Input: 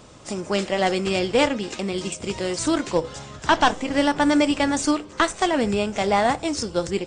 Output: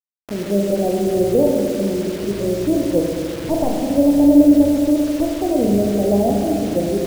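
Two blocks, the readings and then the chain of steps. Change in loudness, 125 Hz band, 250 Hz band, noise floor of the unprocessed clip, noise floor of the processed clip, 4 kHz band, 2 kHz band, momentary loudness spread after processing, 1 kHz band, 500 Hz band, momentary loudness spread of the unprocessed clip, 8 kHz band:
+5.0 dB, +7.0 dB, +8.5 dB, -43 dBFS, -28 dBFS, -7.5 dB, -12.0 dB, 10 LU, -6.0 dB, +6.0 dB, 8 LU, -2.5 dB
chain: Chebyshev low-pass 630 Hz, order 4; spring tank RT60 2.5 s, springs 35/44 ms, chirp 65 ms, DRR -0.5 dB; requantised 6-bit, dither none; gain +3.5 dB

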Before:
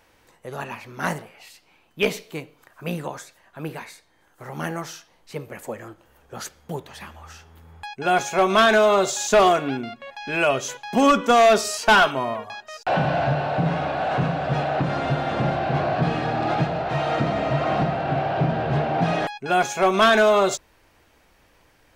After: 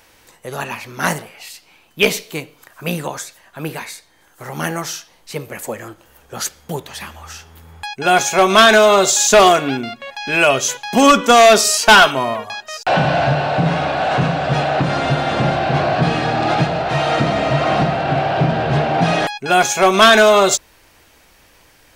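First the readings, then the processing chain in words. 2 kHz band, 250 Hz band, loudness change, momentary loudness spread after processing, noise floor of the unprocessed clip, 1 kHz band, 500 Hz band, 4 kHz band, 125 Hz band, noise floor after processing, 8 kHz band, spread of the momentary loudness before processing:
+8.0 dB, +5.5 dB, +7.0 dB, 20 LU, -60 dBFS, +6.5 dB, +6.0 dB, +10.5 dB, +5.5 dB, -52 dBFS, +13.0 dB, 20 LU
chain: high shelf 2800 Hz +8.5 dB; gain +5.5 dB

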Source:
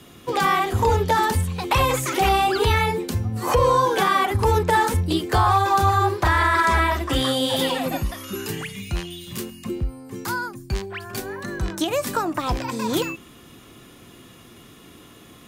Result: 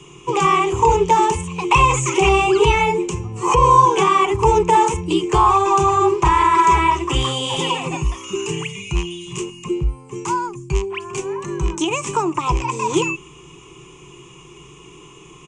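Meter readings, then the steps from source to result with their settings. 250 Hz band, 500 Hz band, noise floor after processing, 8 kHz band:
+3.5 dB, +4.5 dB, -43 dBFS, +5.5 dB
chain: ripple EQ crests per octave 0.72, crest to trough 18 dB; downsampling 22050 Hz

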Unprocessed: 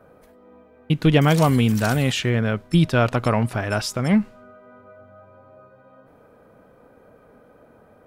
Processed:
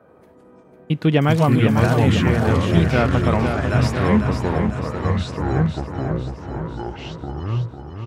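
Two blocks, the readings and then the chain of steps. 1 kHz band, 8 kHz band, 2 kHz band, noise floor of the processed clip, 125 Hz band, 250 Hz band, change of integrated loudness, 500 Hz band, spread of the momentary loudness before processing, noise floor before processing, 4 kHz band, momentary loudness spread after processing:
+3.5 dB, -4.5 dB, +1.5 dB, -50 dBFS, +4.0 dB, +2.5 dB, +0.5 dB, +3.5 dB, 7 LU, -53 dBFS, -1.5 dB, 13 LU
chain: HPF 97 Hz; high shelf 4500 Hz -9.5 dB; echoes that change speed 83 ms, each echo -5 st, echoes 2; on a send: feedback echo 0.5 s, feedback 53%, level -7 dB

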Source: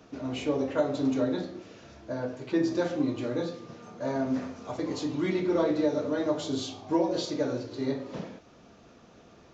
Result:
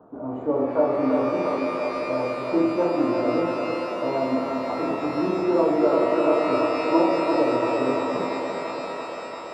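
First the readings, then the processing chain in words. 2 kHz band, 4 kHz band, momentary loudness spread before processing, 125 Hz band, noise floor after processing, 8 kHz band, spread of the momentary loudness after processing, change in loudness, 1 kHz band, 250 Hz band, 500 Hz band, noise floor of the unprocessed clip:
+8.5 dB, +1.0 dB, 12 LU, 0.0 dB, -35 dBFS, n/a, 9 LU, +6.5 dB, +13.0 dB, +5.0 dB, +8.5 dB, -55 dBFS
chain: inverse Chebyshev low-pass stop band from 2100 Hz, stop band 40 dB; tilt +3.5 dB/oct; on a send: thinning echo 0.34 s, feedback 83%, high-pass 310 Hz, level -4 dB; on the sum: shimmer reverb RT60 3.9 s, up +12 st, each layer -8 dB, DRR 2 dB; gain +8 dB

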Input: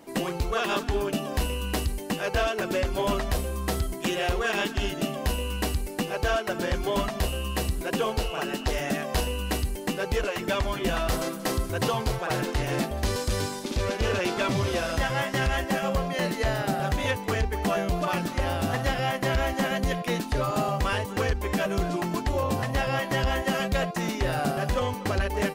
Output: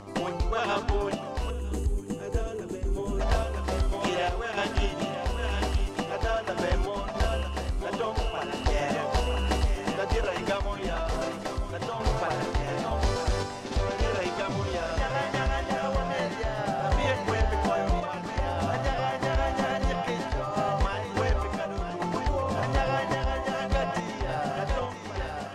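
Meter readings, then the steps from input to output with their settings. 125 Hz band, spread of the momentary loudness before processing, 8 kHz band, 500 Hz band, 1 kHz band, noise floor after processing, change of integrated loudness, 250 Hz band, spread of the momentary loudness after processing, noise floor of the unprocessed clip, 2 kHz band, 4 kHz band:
-1.5 dB, 3 LU, -6.5 dB, -1.5 dB, +0.5 dB, -36 dBFS, -1.5 dB, -3.5 dB, 5 LU, -36 dBFS, -3.5 dB, -4.0 dB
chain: ending faded out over 1.24 s; upward compressor, threshold -45 dBFS; thinning echo 0.953 s, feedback 38%, high-pass 420 Hz, level -7.5 dB; dynamic EQ 790 Hz, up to +7 dB, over -40 dBFS, Q 0.89; compressor 3:1, threshold -23 dBFS, peak gain reduction 5.5 dB; Chebyshev low-pass 6500 Hz, order 2; buzz 100 Hz, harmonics 13, -45 dBFS -2 dB/oct; low shelf 71 Hz +10 dB; spectral gain 1.5–3.21, 500–6100 Hz -13 dB; random-step tremolo

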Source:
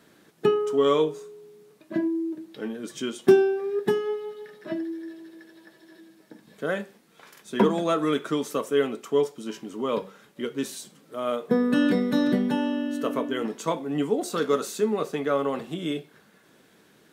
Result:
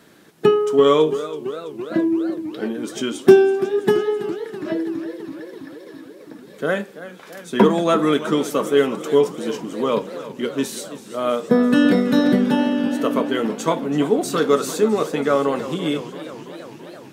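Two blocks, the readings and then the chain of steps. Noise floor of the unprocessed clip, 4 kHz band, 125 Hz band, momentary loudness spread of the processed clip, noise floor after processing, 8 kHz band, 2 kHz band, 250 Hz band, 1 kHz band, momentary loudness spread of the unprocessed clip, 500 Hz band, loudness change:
-59 dBFS, +7.0 dB, +7.0 dB, 19 LU, -42 dBFS, +7.0 dB, +7.0 dB, +7.0 dB, +7.0 dB, 13 LU, +7.0 dB, +6.5 dB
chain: warbling echo 0.333 s, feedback 73%, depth 129 cents, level -14.5 dB; gain +6.5 dB

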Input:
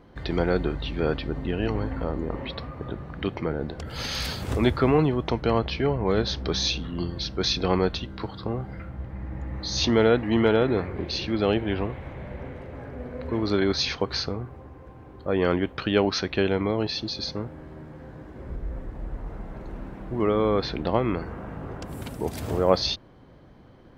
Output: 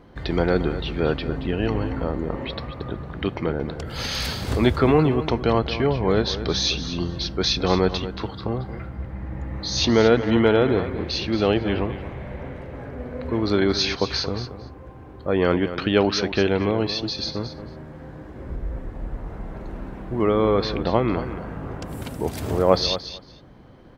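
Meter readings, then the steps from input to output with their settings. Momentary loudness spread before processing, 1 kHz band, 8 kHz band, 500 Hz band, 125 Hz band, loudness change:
16 LU, +3.0 dB, +3.5 dB, +3.5 dB, +3.0 dB, +3.0 dB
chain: feedback echo 0.227 s, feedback 15%, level -12 dB; gain +3 dB

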